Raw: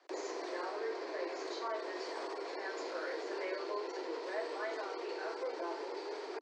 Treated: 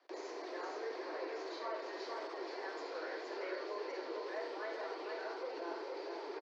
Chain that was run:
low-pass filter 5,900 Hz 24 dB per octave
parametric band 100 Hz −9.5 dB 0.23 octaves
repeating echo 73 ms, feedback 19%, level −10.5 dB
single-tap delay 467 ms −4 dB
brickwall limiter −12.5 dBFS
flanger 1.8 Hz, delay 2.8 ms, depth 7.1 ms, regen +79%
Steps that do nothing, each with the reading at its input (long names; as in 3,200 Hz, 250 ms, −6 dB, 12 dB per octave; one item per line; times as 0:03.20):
parametric band 100 Hz: nothing at its input below 250 Hz
brickwall limiter −12.5 dBFS: peak of its input −25.0 dBFS